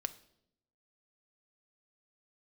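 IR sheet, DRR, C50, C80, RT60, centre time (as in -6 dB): 9.0 dB, 16.5 dB, 19.5 dB, 0.75 s, 3 ms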